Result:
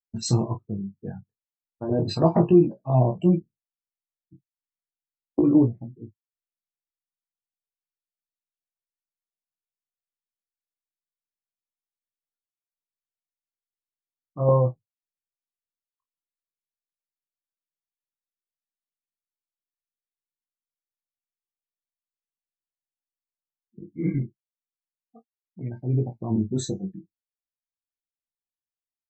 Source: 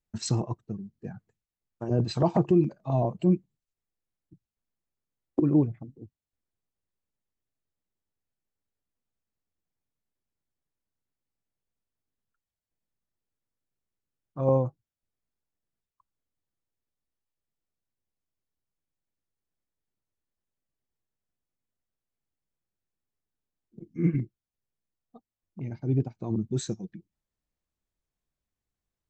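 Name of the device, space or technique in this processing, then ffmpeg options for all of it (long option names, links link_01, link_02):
double-tracked vocal: -filter_complex "[0:a]asettb=1/sr,asplit=3[link_01][link_02][link_03];[link_01]atrim=end=23.934[link_04];[link_02]atrim=start=23.93:end=26.03,asetpts=PTS-STARTPTS,afade=type=in:duration=0.004:curve=qsin,afade=type=out:start_time=2.096:duration=0.004:curve=qsin,lowshelf=frequency=390:gain=-4[link_05];[link_03]atrim=start=26.026[link_06];[link_04][link_05]acrossfade=duration=0.004:curve1=hsin:curve2=qsin[link_07];[link_07][link_06]acrossfade=duration=0.004:curve1=qsin:curve2=hsin,asplit=2[link_08][link_09];[link_09]adelay=31,volume=-9dB[link_10];[link_08][link_10]amix=inputs=2:normalize=0,flanger=delay=16.5:depth=5.1:speed=0.35,afftdn=noise_reduction=29:noise_floor=-49,volume=6.5dB"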